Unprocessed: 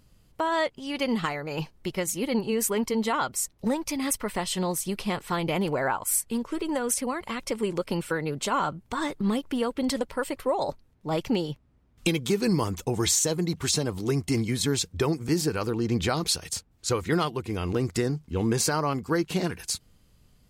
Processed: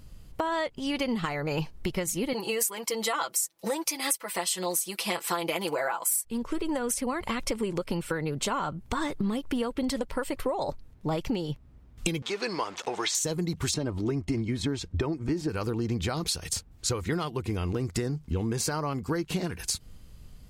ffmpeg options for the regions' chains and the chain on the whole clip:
-filter_complex "[0:a]asettb=1/sr,asplit=3[a][b][c];[a]atrim=end=2.334[d];[b]atrim=start=2.33:end=6.25,asetpts=PTS-STARTPTS,afade=t=in:d=0.004:c=qsin,afade=t=out:st=3.916:d=0.004:c=qsin,highpass=420,aemphasis=mode=production:type=cd,aecho=1:1:6:0.77,atrim=end_sample=172872[e];[c]atrim=start=6.246[f];[d][e]acrossfade=d=0.004:c1=hsin:c2=qsin[g];[g][f]acrossfade=d=0.004:c1=qsin:c2=hsin,asettb=1/sr,asplit=3[h][i][j];[h]atrim=end=12.224[k];[i]atrim=start=12.22:end=13.15,asetpts=PTS-STARTPTS,afade=t=in:d=0.004:c=qsin,afade=t=out:st=0.926:d=0.004:c=qsin,aeval=exprs='val(0)+0.5*0.0119*sgn(val(0))':c=same,highpass=670,lowpass=4.4k,acompressor=mode=upward:threshold=-45dB:ratio=2.5:attack=3.2:release=140:knee=2.83:detection=peak[l];[j]atrim=start=13.146[m];[k][l]acrossfade=d=0.004:c1=hsin:c2=qsin[n];[n][m]acrossfade=d=0.004:c1=qsin:c2=hsin,asettb=1/sr,asplit=3[o][p][q];[o]atrim=end=13.744[r];[p]atrim=start=13.74:end=15.49,asetpts=PTS-STARTPTS,afade=t=in:d=0.004:c=qsin,afade=t=out:st=1.746:d=0.004:c=qsin,aemphasis=mode=reproduction:type=75fm,aecho=1:1:3.2:0.32,atrim=end_sample=77175[s];[q]atrim=start=15.486[t];[r][s]acrossfade=d=0.004:c1=hsin:c2=qsin[u];[u][t]acrossfade=d=0.004:c1=qsin:c2=hsin,lowshelf=f=85:g=9.5,acompressor=threshold=-32dB:ratio=6,volume=5.5dB"

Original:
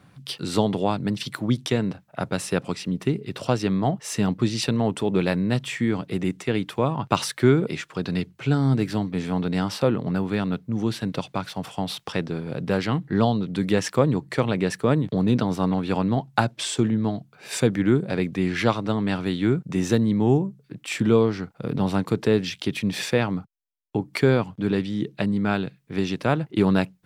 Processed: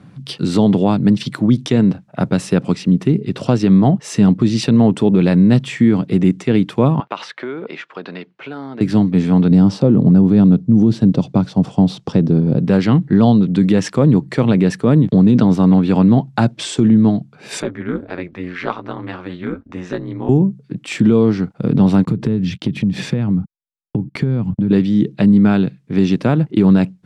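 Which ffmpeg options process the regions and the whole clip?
-filter_complex "[0:a]asettb=1/sr,asplit=3[a][b][c];[a]atrim=end=7.004[d];[b]atrim=start=7:end=8.81,asetpts=PTS-STARTPTS,afade=t=in:d=0.004:c=qsin,afade=t=out:st=1.806:d=0.004:c=qsin,acompressor=threshold=-21dB:ratio=4:attack=3.2:release=140:knee=1:detection=peak,highpass=610,lowpass=2.9k[e];[c]atrim=start=8.806[f];[d][e]acrossfade=d=0.004:c1=hsin:c2=qsin[g];[g][f]acrossfade=d=0.004:c1=qsin:c2=hsin,asettb=1/sr,asplit=3[h][i][j];[h]atrim=end=9.514[k];[i]atrim=start=9.51:end=12.59,asetpts=PTS-STARTPTS,afade=t=in:d=0.004:c=qsin,afade=t=out:st=3.076:d=0.004:c=qsin,lowpass=6.2k,equalizer=f=2.1k:w=0.5:g=-13.5,acontrast=35[l];[j]atrim=start=12.586[m];[k][l]acrossfade=d=0.004:c1=hsin:c2=qsin[n];[n][m]acrossfade=d=0.004:c1=qsin:c2=hsin,asettb=1/sr,asplit=3[o][p][q];[o]atrim=end=17.624[r];[p]atrim=start=17.62:end=20.29,asetpts=PTS-STARTPTS,afade=t=in:d=0.004:c=qsin,afade=t=out:st=2.666:d=0.004:c=qsin,bandpass=f=1.3k:t=q:w=0.89,asplit=2[s][t];[t]adelay=15,volume=-9.5dB[u];[s][u]amix=inputs=2:normalize=0,atrim=end_sample=117747,aeval=exprs='val(0)*sin(2*PI*90*n/s)':c=same[v];[q]atrim=start=20.286[w];[r][v]acrossfade=d=0.004:c1=hsin:c2=qsin[x];[x][w]acrossfade=d=0.004:c1=qsin:c2=hsin,asettb=1/sr,asplit=3[y][z][aa];[y]atrim=end=22.054[ab];[z]atrim=start=22.05:end=24.71,asetpts=PTS-STARTPTS,afade=t=in:d=0.004:c=qsin,afade=t=out:st=2.656:d=0.004:c=qsin,agate=range=-26dB:threshold=-43dB:ratio=16:release=100:detection=peak,bass=f=250:g=13,treble=f=4k:g=-4,acompressor=threshold=-26dB:ratio=6:attack=3.2:release=140:knee=1:detection=peak[ac];[aa]atrim=start=24.706[ad];[ab][ac]acrossfade=d=0.004:c1=hsin:c2=qsin[ae];[ae][ad]acrossfade=d=0.004:c1=qsin:c2=hsin,lowpass=8.4k,equalizer=f=200:t=o:w=2.1:g=10.5,alimiter=level_in=6dB:limit=-1dB:release=50:level=0:latency=1,volume=-2.5dB"

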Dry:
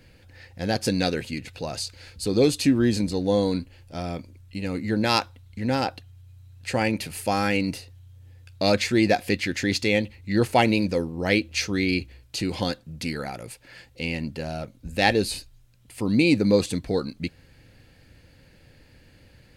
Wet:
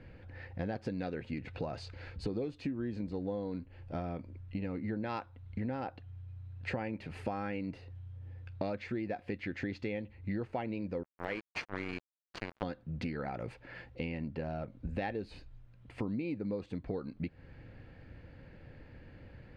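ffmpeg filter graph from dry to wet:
-filter_complex "[0:a]asettb=1/sr,asplit=3[a][b][c];[a]atrim=end=11.034[d];[b]atrim=start=11.03:end=12.63,asetpts=PTS-STARTPTS,afade=t=in:d=0.004:c=qsin,afade=t=out:st=1.596:d=0.004:c=qsin,lowshelf=f=310:g=-11.5,bandreject=f=3.7k:w=8,acrusher=bits=3:mix=0:aa=0.5[e];[c]atrim=start=12.626[f];[d][e]acrossfade=d=0.004:c1=hsin:c2=qsin[g];[g][f]acrossfade=d=0.004:c1=qsin:c2=hsin,lowpass=1.8k,acompressor=threshold=-35dB:ratio=12,volume=1.5dB"

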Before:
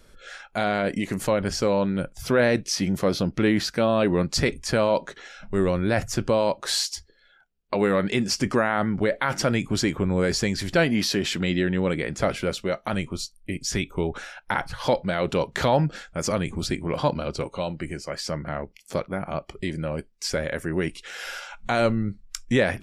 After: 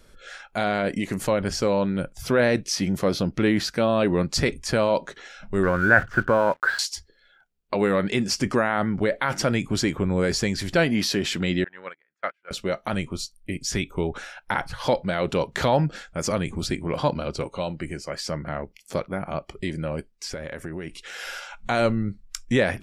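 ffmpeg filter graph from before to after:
-filter_complex "[0:a]asettb=1/sr,asplit=3[a][b][c];[a]atrim=end=5.634[d];[b]atrim=start=5.63:end=6.79,asetpts=PTS-STARTPTS,afade=t=in:d=0.004:c=qsin,afade=t=out:st=1.156:d=0.004:c=qsin,lowpass=f=1.5k:t=q:w=12,aeval=exprs='sgn(val(0))*max(abs(val(0))-0.00562,0)':c=same[e];[c]atrim=start=6.786[f];[d][e]acrossfade=d=0.004:c1=hsin:c2=qsin[g];[g][f]acrossfade=d=0.004:c1=qsin:c2=hsin,asettb=1/sr,asplit=3[h][i][j];[h]atrim=end=11.644[k];[i]atrim=start=11.64:end=12.51,asetpts=PTS-STARTPTS,afade=t=in:d=0.004:c=qsin,afade=t=out:st=0.866:d=0.004:c=qsin,agate=range=-41dB:threshold=-22dB:ratio=16:release=100:detection=peak,acontrast=61,bandpass=f=1.6k:t=q:w=1.9[l];[j]atrim=start=12.506[m];[k][l]acrossfade=d=0.004:c1=hsin:c2=qsin[n];[n][m]acrossfade=d=0.004:c1=qsin:c2=hsin,asettb=1/sr,asplit=3[o][p][q];[o]atrim=end=20.114[r];[p]atrim=start=20.11:end=20.94,asetpts=PTS-STARTPTS,afade=t=in:d=0.004:c=qsin,afade=t=out:st=0.826:d=0.004:c=qsin,highshelf=f=6.3k:g=-5,acompressor=threshold=-29dB:ratio=6:attack=3.2:release=140:knee=1:detection=peak[s];[q]atrim=start=20.936[t];[r][s]acrossfade=d=0.004:c1=hsin:c2=qsin[u];[u][t]acrossfade=d=0.004:c1=qsin:c2=hsin"

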